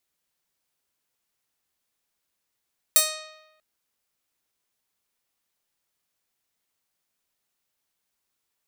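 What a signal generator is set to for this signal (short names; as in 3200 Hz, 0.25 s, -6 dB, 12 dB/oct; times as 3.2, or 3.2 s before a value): plucked string D#5, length 0.64 s, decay 1.04 s, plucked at 0.37, bright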